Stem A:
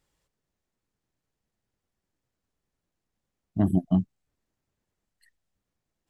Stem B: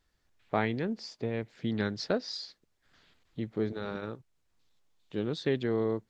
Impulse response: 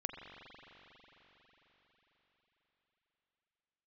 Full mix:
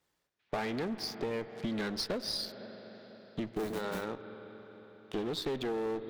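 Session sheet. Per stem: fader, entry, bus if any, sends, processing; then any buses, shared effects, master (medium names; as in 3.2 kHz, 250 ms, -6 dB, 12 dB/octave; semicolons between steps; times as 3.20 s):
-3.0 dB, 0.00 s, no send, square wave that keeps the level; modulation noise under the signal 15 dB; auto duck -10 dB, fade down 0.40 s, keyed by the second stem
-1.0 dB, 0.00 s, send -10 dB, steep low-pass 6.3 kHz; waveshaping leveller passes 3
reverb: on, RT60 4.7 s, pre-delay 41 ms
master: high-pass 270 Hz 6 dB/octave; valve stage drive 20 dB, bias 0.5; compression 4:1, threshold -33 dBFS, peak gain reduction 9.5 dB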